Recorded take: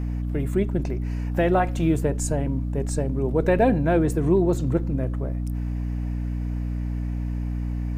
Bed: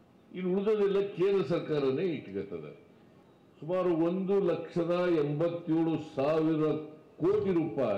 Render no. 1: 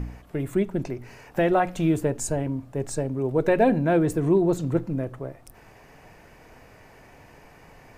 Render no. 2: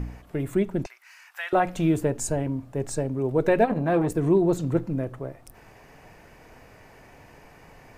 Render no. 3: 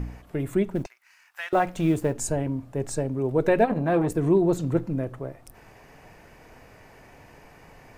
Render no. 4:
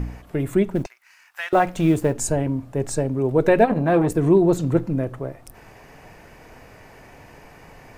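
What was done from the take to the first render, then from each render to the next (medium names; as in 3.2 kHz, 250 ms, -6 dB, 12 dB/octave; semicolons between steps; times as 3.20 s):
de-hum 60 Hz, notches 5
0.86–1.53 s: high-pass 1.2 kHz 24 dB/octave; 3.64–4.17 s: transformer saturation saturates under 530 Hz
0.75–2.14 s: companding laws mixed up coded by A
trim +4.5 dB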